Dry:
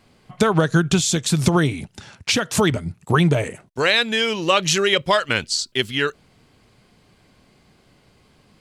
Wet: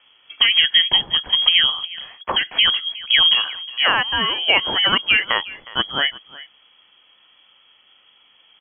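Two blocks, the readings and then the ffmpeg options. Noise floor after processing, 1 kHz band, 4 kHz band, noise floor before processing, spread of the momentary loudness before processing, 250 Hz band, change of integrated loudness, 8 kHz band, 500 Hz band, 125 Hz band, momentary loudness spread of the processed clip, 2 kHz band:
−56 dBFS, −1.0 dB, +10.0 dB, −57 dBFS, 7 LU, −15.5 dB, +3.5 dB, below −40 dB, −11.5 dB, −20.5 dB, 10 LU, +3.0 dB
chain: -filter_complex "[0:a]asplit=2[link_01][link_02];[link_02]adelay=361.5,volume=-18dB,highshelf=frequency=4000:gain=-8.13[link_03];[link_01][link_03]amix=inputs=2:normalize=0,lowpass=frequency=2900:width_type=q:width=0.5098,lowpass=frequency=2900:width_type=q:width=0.6013,lowpass=frequency=2900:width_type=q:width=0.9,lowpass=frequency=2900:width_type=q:width=2.563,afreqshift=-3400,volume=1.5dB"

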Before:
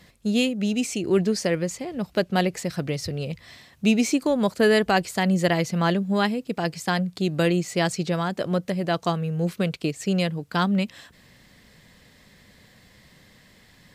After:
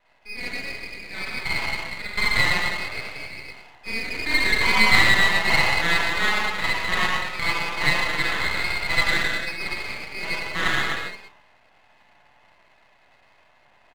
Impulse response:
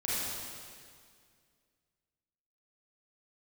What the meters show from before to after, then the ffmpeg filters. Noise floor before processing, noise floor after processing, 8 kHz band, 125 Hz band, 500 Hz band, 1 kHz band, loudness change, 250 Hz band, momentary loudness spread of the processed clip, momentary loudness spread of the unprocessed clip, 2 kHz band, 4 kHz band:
−55 dBFS, −58 dBFS, −1.0 dB, −8.5 dB, −10.0 dB, +1.5 dB, +2.5 dB, −13.0 dB, 16 LU, 8 LU, +11.0 dB, +7.0 dB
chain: -filter_complex "[0:a]lowshelf=frequency=490:width_type=q:width=3:gain=-8.5,asplit=2[link_01][link_02];[link_02]acompressor=threshold=-33dB:ratio=6,volume=2dB[link_03];[link_01][link_03]amix=inputs=2:normalize=0,aeval=exprs='0.631*(cos(1*acos(clip(val(0)/0.631,-1,1)))-cos(1*PI/2))+0.00398*(cos(6*acos(clip(val(0)/0.631,-1,1)))-cos(6*PI/2))+0.0708*(cos(7*acos(clip(val(0)/0.631,-1,1)))-cos(7*PI/2))':channel_layout=same,lowpass=frequency=2300:width_type=q:width=0.5098,lowpass=frequency=2300:width_type=q:width=0.6013,lowpass=frequency=2300:width_type=q:width=0.9,lowpass=frequency=2300:width_type=q:width=2.563,afreqshift=-2700,asplit=2[link_04][link_05];[link_05]highpass=frequency=720:poles=1,volume=11dB,asoftclip=type=tanh:threshold=-5.5dB[link_06];[link_04][link_06]amix=inputs=2:normalize=0,lowpass=frequency=1700:poles=1,volume=-6dB,aecho=1:1:109|130:0.447|0.335[link_07];[1:a]atrim=start_sample=2205,afade=type=out:start_time=0.41:duration=0.01,atrim=end_sample=18522[link_08];[link_07][link_08]afir=irnorm=-1:irlink=0,aeval=exprs='max(val(0),0)':channel_layout=same,volume=-1.5dB"

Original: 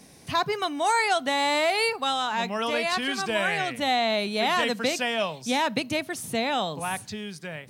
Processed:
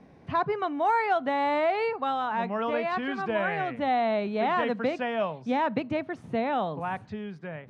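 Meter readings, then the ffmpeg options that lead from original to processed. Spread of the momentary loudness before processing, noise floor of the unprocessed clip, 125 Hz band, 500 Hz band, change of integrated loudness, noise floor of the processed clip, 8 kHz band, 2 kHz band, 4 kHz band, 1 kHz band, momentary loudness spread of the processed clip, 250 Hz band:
7 LU, −49 dBFS, 0.0 dB, 0.0 dB, −2.5 dB, −52 dBFS, below −25 dB, −6.0 dB, −14.5 dB, −0.5 dB, 7 LU, 0.0 dB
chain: -af "lowpass=1500"

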